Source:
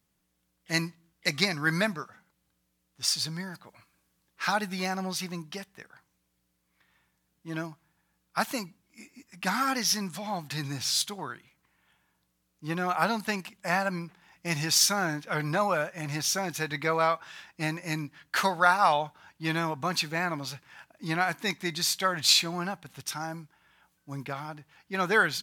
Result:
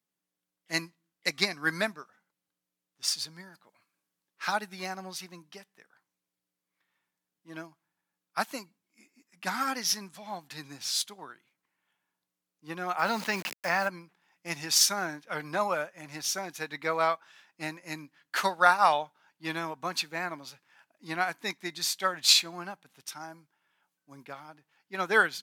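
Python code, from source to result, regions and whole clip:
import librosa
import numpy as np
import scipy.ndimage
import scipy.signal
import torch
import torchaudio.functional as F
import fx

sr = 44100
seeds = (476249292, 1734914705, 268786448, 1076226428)

y = fx.chain(x, sr, fx.cheby_ripple(hz=6800.0, ripple_db=3),
    fx.quant_dither(seeds[0], bits=8, dither='none'),
    fx.env_flatten(amount_pct=70), at=(12.99, 13.88))
y = scipy.signal.sosfilt(scipy.signal.butter(2, 220.0, 'highpass', fs=sr, output='sos'), y)
y = fx.upward_expand(y, sr, threshold_db=-42.0, expansion=1.5)
y = y * librosa.db_to_amplitude(1.5)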